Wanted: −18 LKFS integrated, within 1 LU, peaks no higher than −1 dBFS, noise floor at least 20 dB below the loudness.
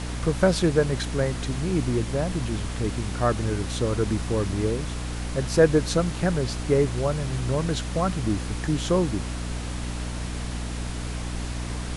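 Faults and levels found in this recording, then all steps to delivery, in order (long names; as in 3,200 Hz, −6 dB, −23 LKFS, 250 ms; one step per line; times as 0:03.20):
mains hum 60 Hz; hum harmonics up to 300 Hz; level of the hum −29 dBFS; background noise floor −32 dBFS; target noise floor −46 dBFS; integrated loudness −26.0 LKFS; sample peak −5.0 dBFS; target loudness −18.0 LKFS
→ hum removal 60 Hz, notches 5
noise reduction from a noise print 14 dB
level +8 dB
brickwall limiter −1 dBFS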